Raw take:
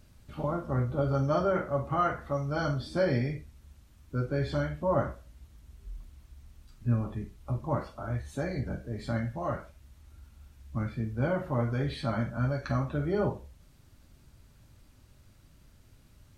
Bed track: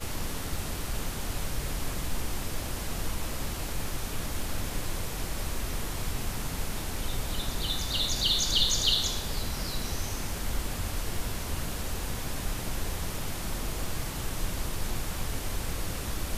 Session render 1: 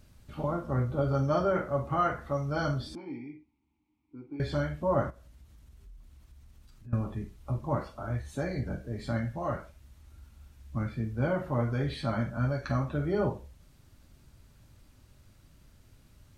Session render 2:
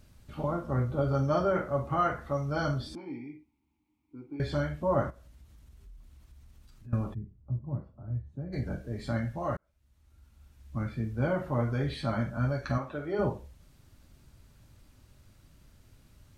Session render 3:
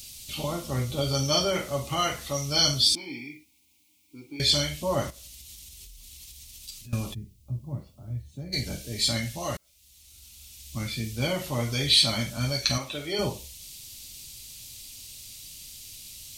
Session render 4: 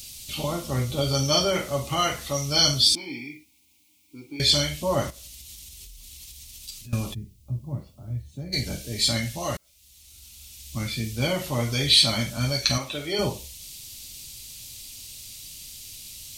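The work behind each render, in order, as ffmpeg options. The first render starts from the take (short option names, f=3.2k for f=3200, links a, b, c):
-filter_complex "[0:a]asettb=1/sr,asplit=3[a][b][c];[a]atrim=end=2.954[d];[b]atrim=start=2.95:end=4.4,asetpts=PTS-STARTPTS,afade=t=in:d=0.004:c=qsin,afade=t=out:st=1.446:d=0.004:c=qsin,asplit=3[e][f][g];[e]bandpass=f=300:t=q:w=8,volume=0dB[h];[f]bandpass=f=870:t=q:w=8,volume=-6dB[i];[g]bandpass=f=2.24k:t=q:w=8,volume=-9dB[j];[h][i][j]amix=inputs=3:normalize=0[k];[c]atrim=start=4.396[l];[d][k]acrossfade=d=0.004:c1=hsin:c2=qsin[m];[m][l]acrossfade=d=0.004:c1=qsin:c2=hsin,asettb=1/sr,asplit=3[n][o][p];[n]atrim=end=5.104[q];[o]atrim=start=5.1:end=6.93,asetpts=PTS-STARTPTS,afade=t=in:d=0.004:c=qsin,afade=t=out:st=1.826:d=0.004:c=qsin,acompressor=threshold=-51dB:ratio=2.5:attack=3.2:release=140:knee=1:detection=peak[r];[p]atrim=start=6.926[s];[q][r]acrossfade=d=0.004:c1=hsin:c2=qsin[t];[t][s]acrossfade=d=0.004:c1=qsin:c2=hsin"
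-filter_complex "[0:a]asplit=3[a][b][c];[a]afade=t=out:st=7.13:d=0.02[d];[b]bandpass=f=120:t=q:w=1.2,afade=t=in:st=7.13:d=0.02,afade=t=out:st=8.52:d=0.02[e];[c]afade=t=in:st=8.52:d=0.02[f];[d][e][f]amix=inputs=3:normalize=0,asettb=1/sr,asplit=3[g][h][i];[g]atrim=end=12.784[j];[h]atrim=start=12.78:end=13.19,asetpts=PTS-STARTPTS,afade=t=in:d=0.004:c=qsin,afade=t=out:st=0.406:d=0.004:c=qsin,bass=f=250:g=-13,treble=f=4k:g=-6[k];[i]atrim=start=13.186[l];[j][k]acrossfade=d=0.004:c1=hsin:c2=qsin[m];[m][l]acrossfade=d=0.004:c1=qsin:c2=hsin,asplit=2[n][o];[n]atrim=end=9.57,asetpts=PTS-STARTPTS,afade=t=out:st=9.566:d=0.004:c=hsin[p];[o]atrim=start=9.57,asetpts=PTS-STARTPTS,afade=t=in:d=1.38[q];[p][q]concat=n=2:v=0:a=1"
-af "aexciter=amount=14.5:drive=6.4:freq=2.4k"
-af "volume=2.5dB"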